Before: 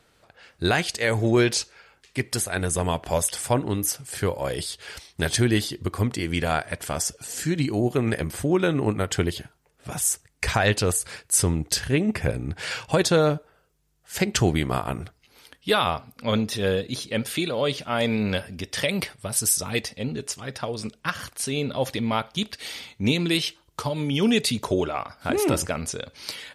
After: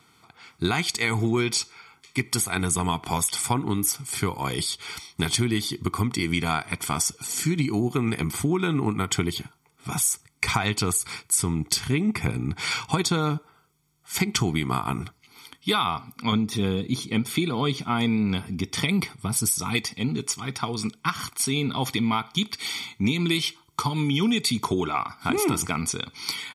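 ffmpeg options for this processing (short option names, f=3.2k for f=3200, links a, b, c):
-filter_complex "[0:a]asettb=1/sr,asplit=3[a][b][c];[a]atrim=end=16.324[d];[b]atrim=start=16.32:end=19.61,asetpts=PTS-STARTPTS,afade=t=in:d=0.004:c=qsin,afade=t=out:st=3.286:d=0.004:c=qsin,tiltshelf=f=750:g=4[e];[c]atrim=start=19.606[f];[d][e]acrossfade=d=0.004:c1=hsin:c2=qsin[g];[g][f]acrossfade=d=0.004:c1=qsin:c2=hsin,highpass=130,aecho=1:1:0.9:0.94,acompressor=threshold=-21dB:ratio=6,volume=1.5dB"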